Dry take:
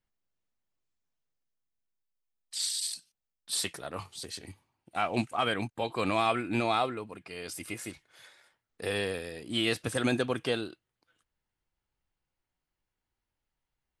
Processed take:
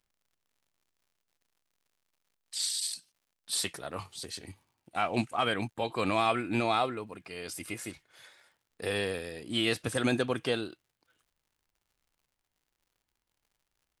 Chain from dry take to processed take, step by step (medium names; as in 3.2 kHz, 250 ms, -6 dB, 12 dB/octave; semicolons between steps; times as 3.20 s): crackle 110 per s -60 dBFS